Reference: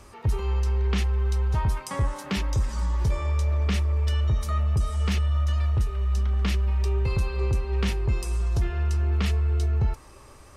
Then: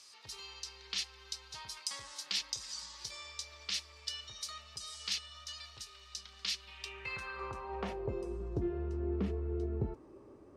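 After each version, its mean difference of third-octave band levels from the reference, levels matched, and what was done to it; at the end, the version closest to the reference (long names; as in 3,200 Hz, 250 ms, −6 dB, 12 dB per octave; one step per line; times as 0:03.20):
10.0 dB: band-pass filter sweep 4,500 Hz → 330 Hz, 0:06.55–0:08.38
bass and treble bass +2 dB, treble +6 dB
level +3 dB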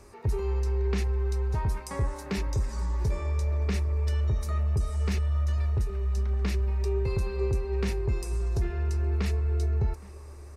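2.0 dB: thirty-one-band graphic EQ 400 Hz +7 dB, 1,250 Hz −4 dB, 3,150 Hz −10 dB
slap from a distant wall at 140 metres, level −19 dB
level −3.5 dB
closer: second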